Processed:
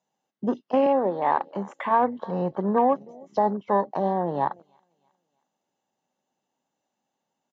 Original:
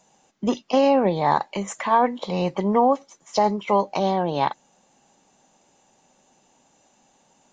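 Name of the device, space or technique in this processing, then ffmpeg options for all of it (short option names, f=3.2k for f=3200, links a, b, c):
over-cleaned archive recording: -filter_complex "[0:a]bandreject=f=2.4k:w=10,asettb=1/sr,asplit=3[a][b][c];[a]atrim=end=0.864[d];[b]atrim=start=0.86:end=1.49,asetpts=PTS-STARTPTS,afade=t=in:d=0.004:c=qsin,afade=t=out:st=0.626:d=0.004:c=qsin,highpass=290[e];[c]atrim=start=1.486[f];[d][e]acrossfade=d=0.004:c1=hsin:c2=qsin[g];[g][f]acrossfade=d=0.004:c1=qsin:c2=hsin,highpass=110,lowpass=5k,aecho=1:1:318|636|954:0.0794|0.0357|0.0161,afwtdn=0.0224,volume=-2.5dB"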